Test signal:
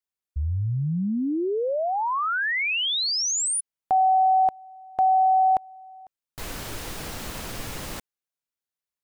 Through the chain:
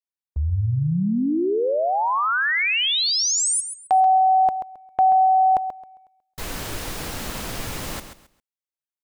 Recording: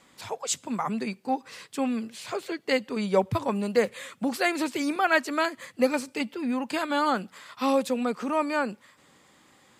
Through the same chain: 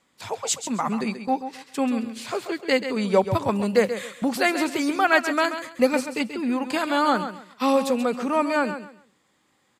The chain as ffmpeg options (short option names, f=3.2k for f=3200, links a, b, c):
-filter_complex "[0:a]agate=range=-12dB:threshold=-44dB:ratio=16:release=116:detection=peak,asplit=2[a][b];[b]aecho=0:1:134|268|402:0.316|0.0759|0.0182[c];[a][c]amix=inputs=2:normalize=0,volume=3.5dB"